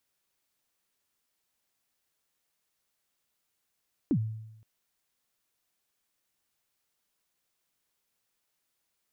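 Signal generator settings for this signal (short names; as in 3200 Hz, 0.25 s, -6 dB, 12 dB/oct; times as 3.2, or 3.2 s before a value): kick drum length 0.52 s, from 340 Hz, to 110 Hz, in 71 ms, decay 0.90 s, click off, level -20.5 dB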